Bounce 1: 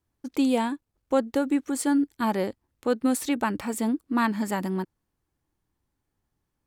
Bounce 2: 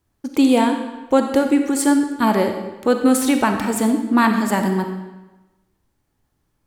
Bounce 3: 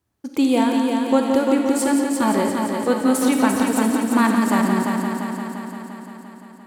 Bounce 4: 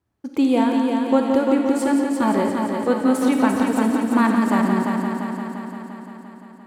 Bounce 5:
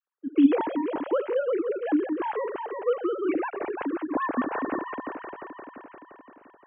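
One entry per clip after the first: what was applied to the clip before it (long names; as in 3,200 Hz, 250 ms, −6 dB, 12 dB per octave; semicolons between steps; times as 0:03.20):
convolution reverb RT60 1.1 s, pre-delay 5 ms, DRR 5 dB; level +8 dB
high-pass filter 63 Hz; echo machine with several playback heads 173 ms, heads first and second, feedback 67%, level −7.5 dB; level −3.5 dB
high-shelf EQ 3,900 Hz −10 dB
three sine waves on the formant tracks; level −8 dB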